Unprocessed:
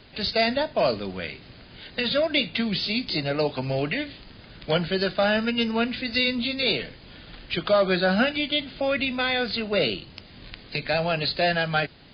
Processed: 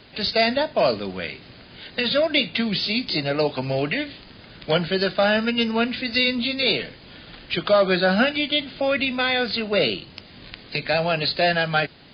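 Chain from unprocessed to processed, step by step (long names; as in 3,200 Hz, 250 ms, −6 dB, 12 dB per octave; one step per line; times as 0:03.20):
low-shelf EQ 71 Hz −9.5 dB
level +3 dB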